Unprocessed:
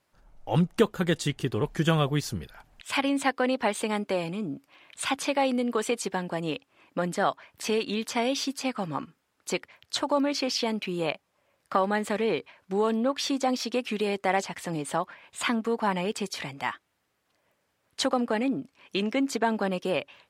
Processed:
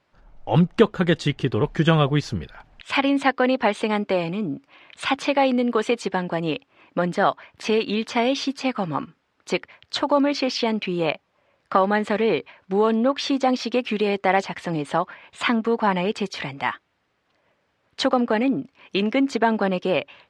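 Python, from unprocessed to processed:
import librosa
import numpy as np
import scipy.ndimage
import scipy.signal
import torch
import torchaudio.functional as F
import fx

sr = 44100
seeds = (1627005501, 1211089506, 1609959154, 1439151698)

y = scipy.signal.sosfilt(scipy.signal.butter(2, 4100.0, 'lowpass', fs=sr, output='sos'), x)
y = y * librosa.db_to_amplitude(6.0)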